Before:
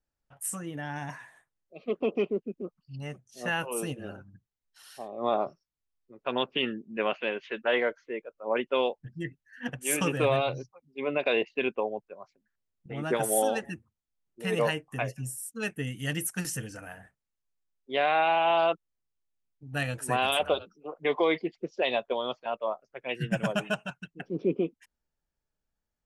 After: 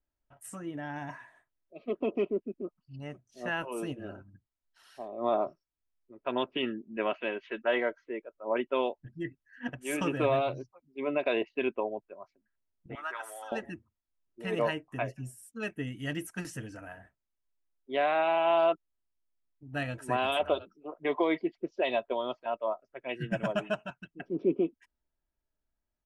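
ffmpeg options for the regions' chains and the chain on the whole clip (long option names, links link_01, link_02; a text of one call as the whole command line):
ffmpeg -i in.wav -filter_complex "[0:a]asettb=1/sr,asplit=3[link_01][link_02][link_03];[link_01]atrim=end=12.954[link_04];[link_02]atrim=start=12.95:end=13.52,asetpts=PTS-STARTPTS,afade=type=in:duration=0.004:curve=qsin,afade=type=out:start_time=0.566:duration=0.004:curve=qsin,acompressor=threshold=-28dB:ratio=10:attack=3.2:release=140:knee=1:detection=peak,highpass=frequency=1200:width_type=q:width=2.6[link_05];[link_03]atrim=start=13.516[link_06];[link_04][link_05]acrossfade=duration=0.004:curve1=hsin:curve2=qsin[link_07];[link_07][link_06]acrossfade=duration=0.004:curve1=qsin:curve2=hsin,lowpass=frequency=2100:poles=1,aecho=1:1:3.1:0.39,volume=-1.5dB" out.wav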